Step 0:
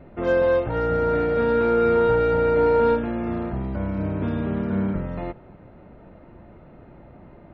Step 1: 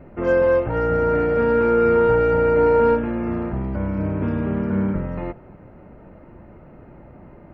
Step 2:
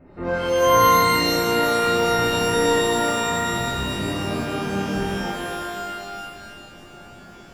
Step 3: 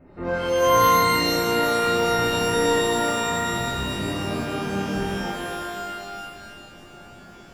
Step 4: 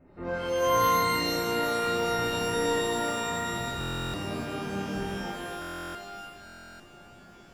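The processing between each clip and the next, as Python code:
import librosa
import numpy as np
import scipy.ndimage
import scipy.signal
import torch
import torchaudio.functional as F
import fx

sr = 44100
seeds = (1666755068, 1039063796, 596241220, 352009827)

y1 = fx.peak_eq(x, sr, hz=3700.0, db=-15.0, octaves=0.37)
y1 = fx.notch(y1, sr, hz=690.0, q=23.0)
y1 = y1 * 10.0 ** (2.5 / 20.0)
y2 = fx.dereverb_blind(y1, sr, rt60_s=1.7)
y2 = fx.rev_shimmer(y2, sr, seeds[0], rt60_s=2.2, semitones=12, shimmer_db=-2, drr_db=-8.0)
y2 = y2 * 10.0 ** (-8.5 / 20.0)
y3 = np.clip(y2, -10.0 ** (-9.5 / 20.0), 10.0 ** (-9.5 / 20.0))
y3 = y3 * 10.0 ** (-1.5 / 20.0)
y4 = fx.buffer_glitch(y3, sr, at_s=(3.79, 5.6, 6.45), block=1024, repeats=14)
y4 = y4 * 10.0 ** (-6.5 / 20.0)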